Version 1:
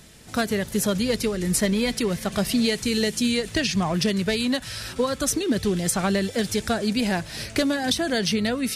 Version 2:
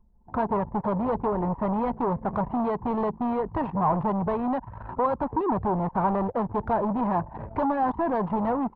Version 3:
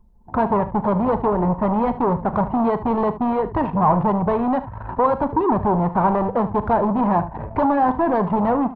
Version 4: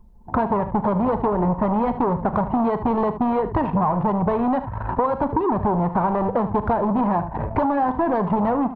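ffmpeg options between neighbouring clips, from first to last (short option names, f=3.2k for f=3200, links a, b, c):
-af "asoftclip=type=hard:threshold=-27dB,lowpass=f=950:t=q:w=6.1,anlmdn=6.31,volume=1.5dB"
-af "aecho=1:1:39|74:0.168|0.188,volume=6.5dB"
-af "acompressor=threshold=-22dB:ratio=6,volume=4.5dB"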